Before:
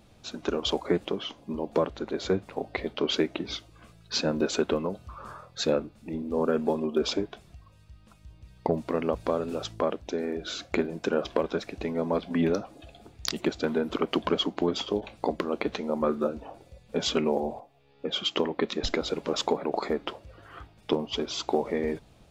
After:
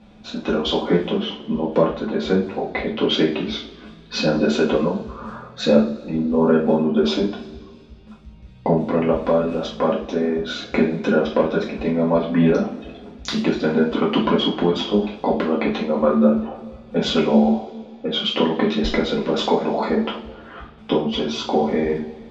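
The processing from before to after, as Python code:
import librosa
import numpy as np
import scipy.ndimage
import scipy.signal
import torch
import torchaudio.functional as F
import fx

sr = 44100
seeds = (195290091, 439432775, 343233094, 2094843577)

y = scipy.signal.sosfilt(scipy.signal.butter(2, 4000.0, 'lowpass', fs=sr, output='sos'), x)
y = fx.peak_eq(y, sr, hz=220.0, db=10.0, octaves=0.32)
y = fx.rev_double_slope(y, sr, seeds[0], early_s=0.35, late_s=2.1, knee_db=-21, drr_db=-5.5)
y = y * librosa.db_to_amplitude(1.5)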